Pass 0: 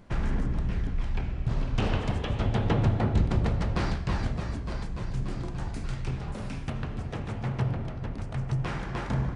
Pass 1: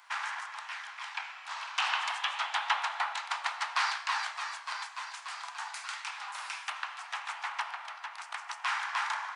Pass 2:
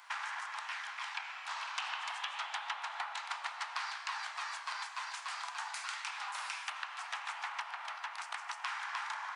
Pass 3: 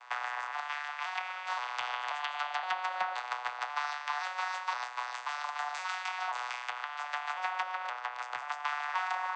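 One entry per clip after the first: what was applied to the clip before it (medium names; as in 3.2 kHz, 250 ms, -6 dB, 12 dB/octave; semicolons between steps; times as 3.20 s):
steep high-pass 870 Hz 48 dB/octave; trim +7.5 dB
compression 6:1, threshold -38 dBFS, peak gain reduction 14 dB; trim +1.5 dB
vocoder on a broken chord minor triad, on B2, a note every 526 ms; trim +6 dB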